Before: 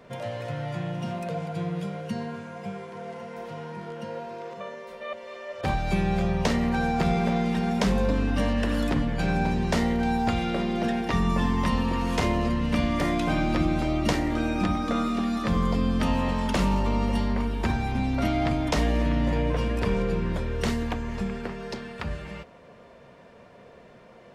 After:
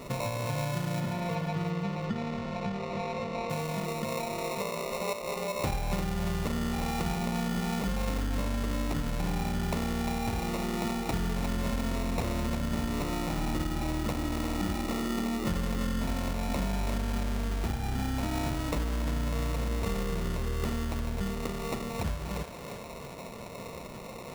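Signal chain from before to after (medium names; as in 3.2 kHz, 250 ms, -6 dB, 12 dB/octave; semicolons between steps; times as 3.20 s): bass shelf 130 Hz +6 dB; compression 5:1, threshold -37 dBFS, peak gain reduction 18.5 dB; sample-rate reducer 1.6 kHz, jitter 0%; 1.00–3.50 s: distance through air 160 m; thinning echo 350 ms, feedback 42%, level -6 dB; trim +7 dB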